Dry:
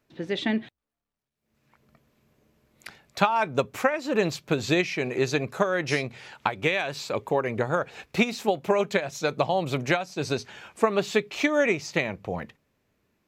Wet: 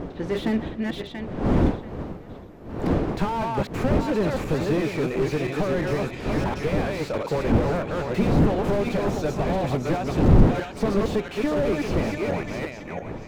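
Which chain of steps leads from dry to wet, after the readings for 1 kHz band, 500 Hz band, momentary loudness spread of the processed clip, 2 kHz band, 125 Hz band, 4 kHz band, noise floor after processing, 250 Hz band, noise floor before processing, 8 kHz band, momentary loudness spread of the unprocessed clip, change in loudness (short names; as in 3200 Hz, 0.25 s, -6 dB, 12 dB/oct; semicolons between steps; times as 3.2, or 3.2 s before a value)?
-0.5 dB, +1.5 dB, 11 LU, -5.0 dB, +10.0 dB, -4.5 dB, -38 dBFS, +6.5 dB, under -85 dBFS, -4.5 dB, 8 LU, +2.0 dB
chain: regenerating reverse delay 0.342 s, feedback 44%, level -4.5 dB; wind noise 390 Hz -26 dBFS; slew limiter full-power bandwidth 35 Hz; gain +2.5 dB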